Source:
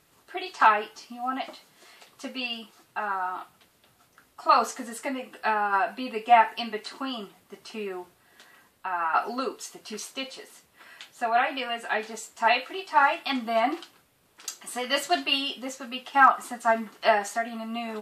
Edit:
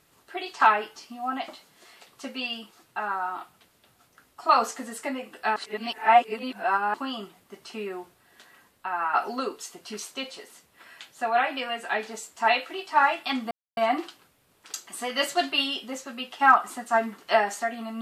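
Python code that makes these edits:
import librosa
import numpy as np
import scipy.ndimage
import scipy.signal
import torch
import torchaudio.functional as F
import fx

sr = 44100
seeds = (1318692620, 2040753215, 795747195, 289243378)

y = fx.edit(x, sr, fx.reverse_span(start_s=5.56, length_s=1.38),
    fx.insert_silence(at_s=13.51, length_s=0.26), tone=tone)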